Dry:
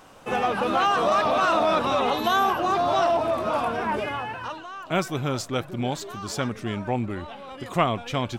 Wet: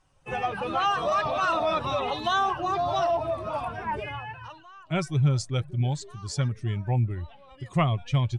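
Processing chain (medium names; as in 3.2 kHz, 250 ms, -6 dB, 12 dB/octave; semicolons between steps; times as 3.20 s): expander on every frequency bin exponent 1.5; elliptic low-pass 9.7 kHz, stop band 50 dB; resonant low shelf 180 Hz +6.5 dB, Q 3; band-stop 470 Hz, Q 12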